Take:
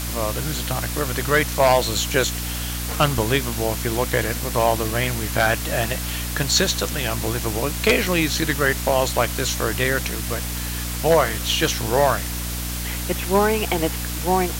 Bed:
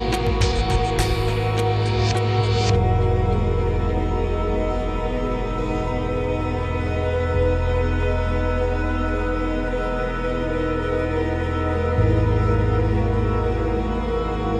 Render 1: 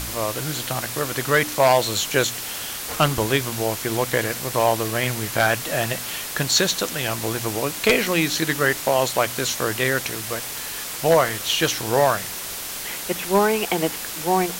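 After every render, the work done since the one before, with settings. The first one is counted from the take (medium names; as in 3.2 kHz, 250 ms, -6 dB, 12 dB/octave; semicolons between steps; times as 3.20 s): de-hum 60 Hz, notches 5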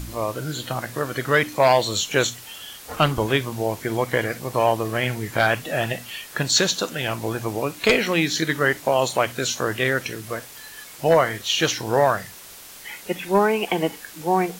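noise print and reduce 11 dB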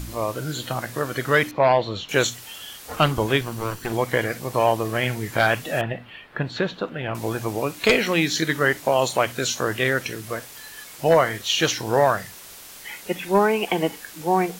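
1.51–2.09 s: distance through air 310 m; 3.41–3.93 s: comb filter that takes the minimum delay 0.68 ms; 5.81–7.15 s: distance through air 490 m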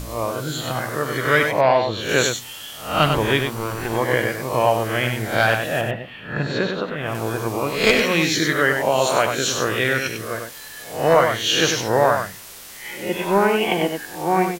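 reverse spectral sustain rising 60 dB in 0.48 s; delay 97 ms -6 dB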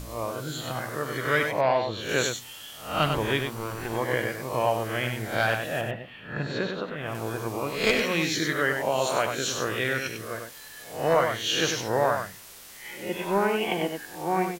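trim -7 dB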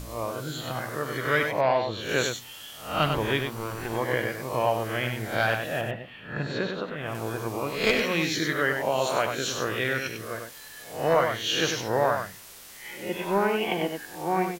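dynamic bell 8.3 kHz, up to -4 dB, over -47 dBFS, Q 1.4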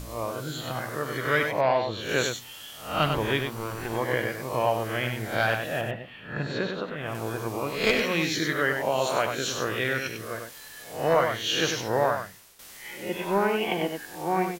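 12.03–12.59 s: fade out, to -12 dB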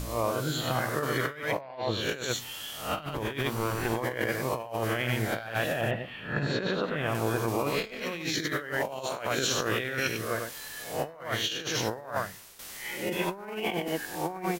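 compressor with a negative ratio -30 dBFS, ratio -0.5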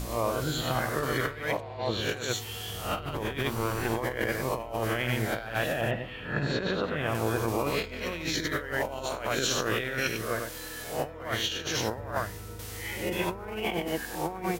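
add bed -23.5 dB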